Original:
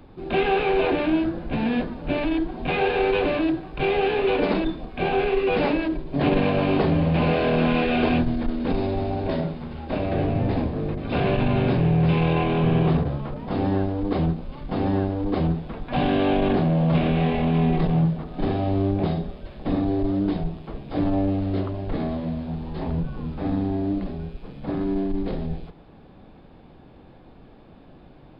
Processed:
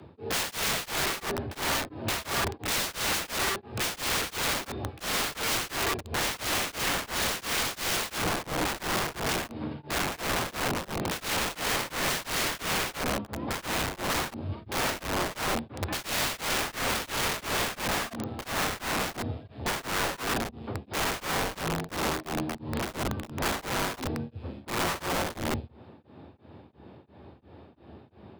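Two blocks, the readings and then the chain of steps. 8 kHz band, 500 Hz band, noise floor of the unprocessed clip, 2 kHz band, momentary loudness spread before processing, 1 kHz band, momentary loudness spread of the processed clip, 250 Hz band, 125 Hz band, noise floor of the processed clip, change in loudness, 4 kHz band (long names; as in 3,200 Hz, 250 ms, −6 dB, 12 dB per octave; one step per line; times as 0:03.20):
can't be measured, −10.5 dB, −48 dBFS, +1.5 dB, 9 LU, −3.0 dB, 6 LU, −14.0 dB, −13.5 dB, −53 dBFS, −6.0 dB, +6.0 dB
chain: frequency shifter +67 Hz
wrap-around overflow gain 22.5 dB
tremolo along a rectified sine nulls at 2.9 Hz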